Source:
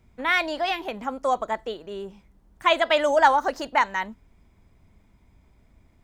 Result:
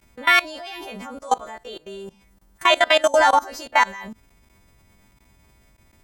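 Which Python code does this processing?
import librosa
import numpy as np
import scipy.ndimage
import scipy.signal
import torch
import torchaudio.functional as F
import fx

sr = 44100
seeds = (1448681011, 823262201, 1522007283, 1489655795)

y = fx.freq_snap(x, sr, grid_st=2)
y = fx.level_steps(y, sr, step_db=21)
y = y * 10.0 ** (7.0 / 20.0)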